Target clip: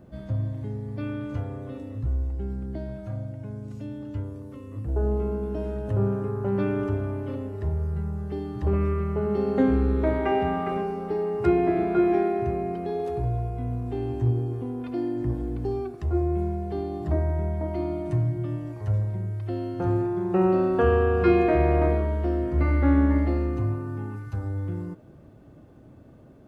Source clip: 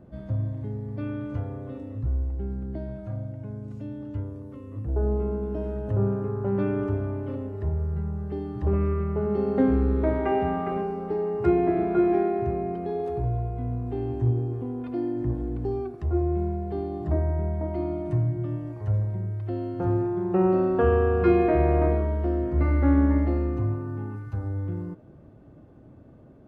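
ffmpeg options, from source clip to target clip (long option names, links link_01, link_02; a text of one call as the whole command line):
ffmpeg -i in.wav -af "highshelf=frequency=2600:gain=10" out.wav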